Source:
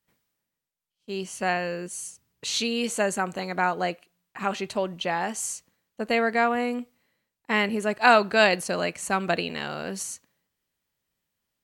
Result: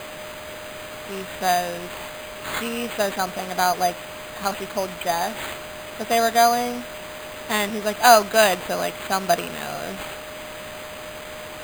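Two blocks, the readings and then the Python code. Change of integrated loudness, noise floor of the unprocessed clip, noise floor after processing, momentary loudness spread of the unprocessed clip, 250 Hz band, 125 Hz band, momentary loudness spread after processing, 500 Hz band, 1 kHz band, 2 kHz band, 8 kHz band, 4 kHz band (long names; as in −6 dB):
+3.5 dB, −85 dBFS, −36 dBFS, 15 LU, −1.0 dB, 0.0 dB, 17 LU, +4.0 dB, +5.5 dB, +0.5 dB, +4.5 dB, +4.0 dB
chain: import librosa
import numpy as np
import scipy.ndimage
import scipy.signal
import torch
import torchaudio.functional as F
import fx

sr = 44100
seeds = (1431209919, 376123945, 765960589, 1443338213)

y = x + 10.0 ** (-36.0 / 20.0) * np.sin(2.0 * np.pi * 4900.0 * np.arange(len(x)) / sr)
y = fx.small_body(y, sr, hz=(700.0, 3400.0), ring_ms=45, db=9)
y = fx.quant_dither(y, sr, seeds[0], bits=6, dither='triangular')
y = fx.dynamic_eq(y, sr, hz=1100.0, q=0.91, threshold_db=-32.0, ratio=4.0, max_db=4)
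y = np.repeat(y[::8], 8)[:len(y)]
y = F.gain(torch.from_numpy(y), -1.5).numpy()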